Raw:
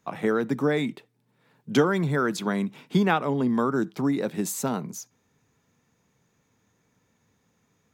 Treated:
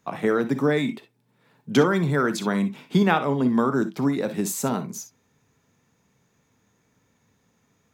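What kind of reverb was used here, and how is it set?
non-linear reverb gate 80 ms rising, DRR 10 dB; gain +2 dB

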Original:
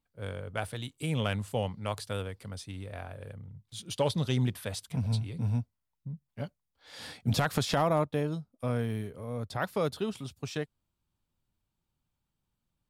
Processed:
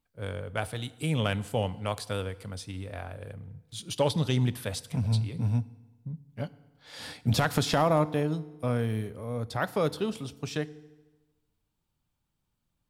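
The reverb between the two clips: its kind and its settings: FDN reverb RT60 1.2 s, low-frequency decay 1×, high-frequency decay 0.8×, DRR 16 dB; gain +2.5 dB

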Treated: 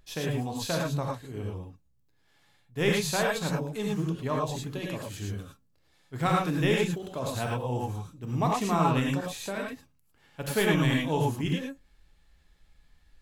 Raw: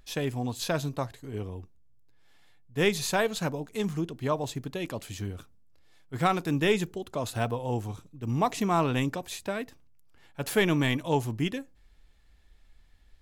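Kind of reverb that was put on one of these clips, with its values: non-linear reverb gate 0.13 s rising, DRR -1.5 dB; gain -3.5 dB

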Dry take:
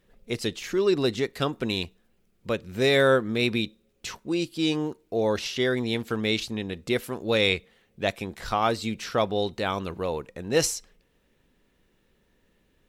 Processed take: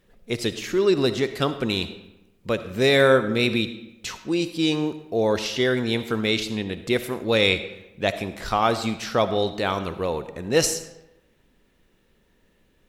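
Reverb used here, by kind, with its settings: digital reverb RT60 0.96 s, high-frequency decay 0.7×, pre-delay 25 ms, DRR 11 dB; gain +3 dB

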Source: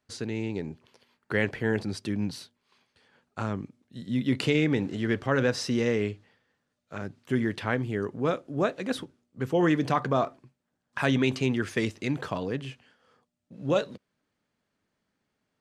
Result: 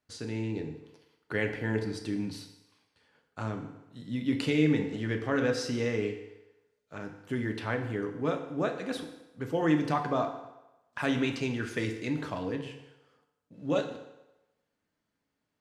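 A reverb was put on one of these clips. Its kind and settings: FDN reverb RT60 1 s, low-frequency decay 0.75×, high-frequency decay 0.85×, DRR 4 dB; gain -5 dB

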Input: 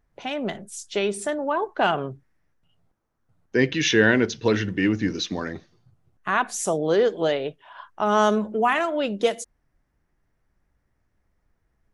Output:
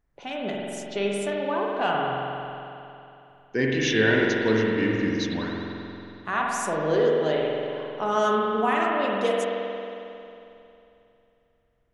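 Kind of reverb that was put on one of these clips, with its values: spring tank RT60 2.9 s, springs 45 ms, chirp 75 ms, DRR -2.5 dB; gain -5.5 dB

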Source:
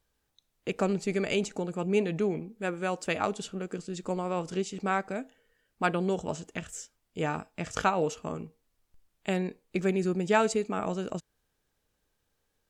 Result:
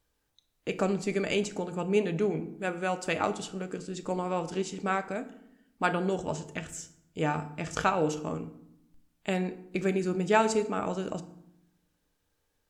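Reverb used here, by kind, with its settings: FDN reverb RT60 0.76 s, low-frequency decay 1.55×, high-frequency decay 0.65×, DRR 9 dB

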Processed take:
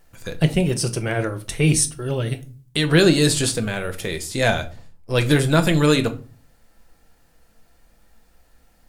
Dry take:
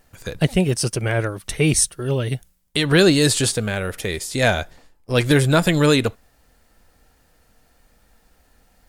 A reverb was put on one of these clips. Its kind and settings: shoebox room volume 230 m³, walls furnished, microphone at 0.76 m; gain -2 dB

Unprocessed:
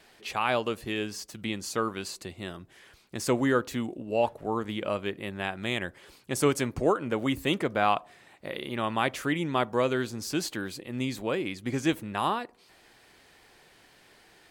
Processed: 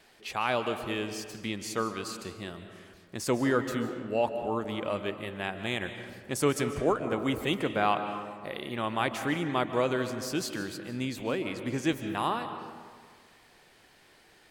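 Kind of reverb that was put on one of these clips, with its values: digital reverb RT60 1.8 s, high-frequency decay 0.5×, pre-delay 0.105 s, DRR 8 dB; gain -2 dB

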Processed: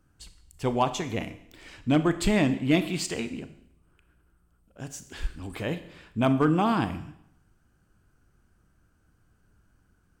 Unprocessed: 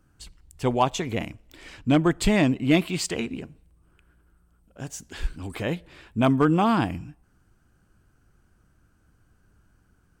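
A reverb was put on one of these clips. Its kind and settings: Schroeder reverb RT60 0.73 s, combs from 26 ms, DRR 10.5 dB; gain -3 dB

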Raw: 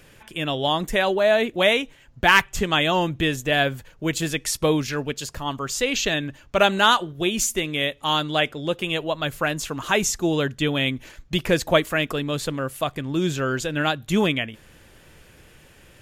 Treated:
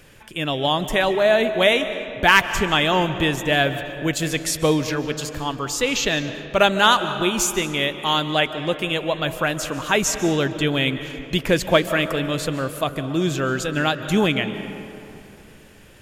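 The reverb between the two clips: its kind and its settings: digital reverb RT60 2.8 s, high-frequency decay 0.5×, pre-delay 0.105 s, DRR 10 dB; gain +1.5 dB

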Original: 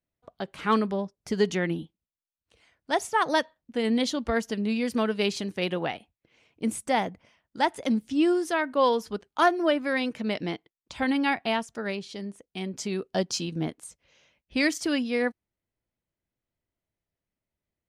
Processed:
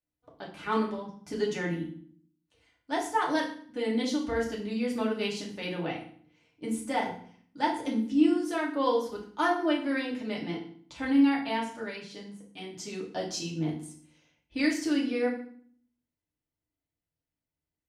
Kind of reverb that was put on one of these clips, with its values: FDN reverb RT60 0.52 s, low-frequency decay 1.55×, high-frequency decay 0.9×, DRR -4 dB; gain -10 dB

